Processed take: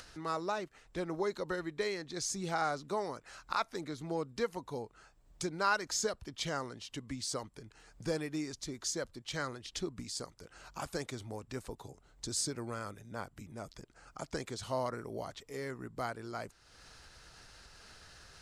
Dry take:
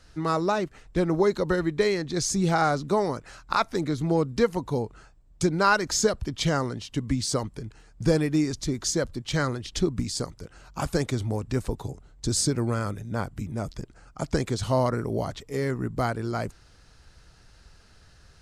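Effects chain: upward compressor, threshold -29 dBFS; bass shelf 300 Hz -11 dB; trim -8.5 dB

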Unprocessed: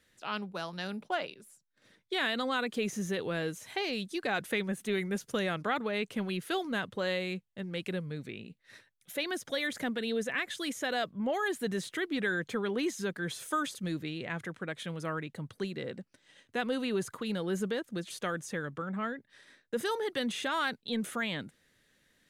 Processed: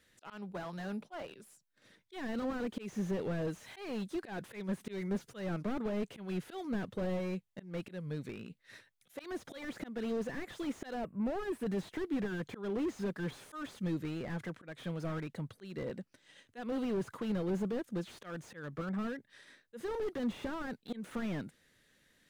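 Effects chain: slow attack 207 ms; spectral selection erased 11.01–11.66 s, 2.9–7.4 kHz; slew-rate limiter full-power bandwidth 10 Hz

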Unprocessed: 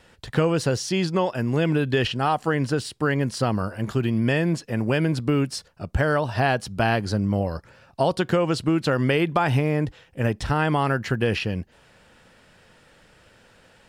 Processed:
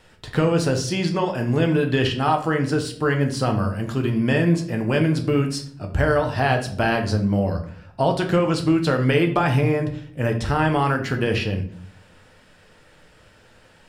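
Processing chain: 7.51–8.15 s: tone controls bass +2 dB, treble -4 dB; reverberation RT60 0.55 s, pre-delay 7 ms, DRR 3.5 dB

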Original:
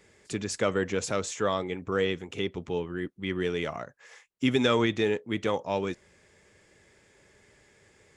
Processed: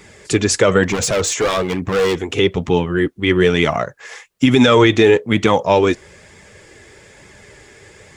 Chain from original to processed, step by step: 0.83–2.20 s: hard clipper -30.5 dBFS, distortion -11 dB; flange 1.1 Hz, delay 0.8 ms, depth 2.2 ms, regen -45%; loudness maximiser +21.5 dB; trim -1 dB

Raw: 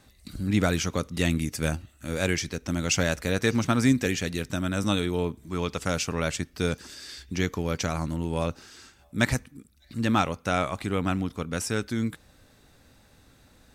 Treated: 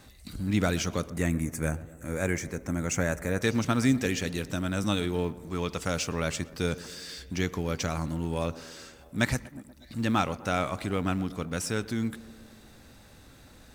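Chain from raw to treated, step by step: companding laws mixed up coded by mu; 1.10–3.42 s: high-order bell 3.8 kHz -13 dB 1.2 oct; tape echo 122 ms, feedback 78%, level -16.5 dB, low-pass 1.4 kHz; trim -3 dB

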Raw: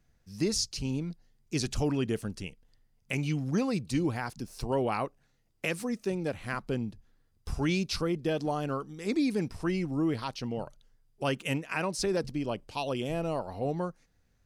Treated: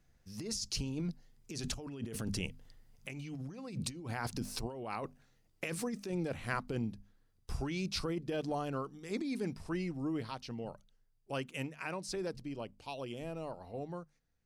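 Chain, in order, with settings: Doppler pass-by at 3.10 s, 6 m/s, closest 8.3 m; hum notches 50/100/150/200/250 Hz; compressor with a negative ratio -41 dBFS, ratio -1; trim +3 dB

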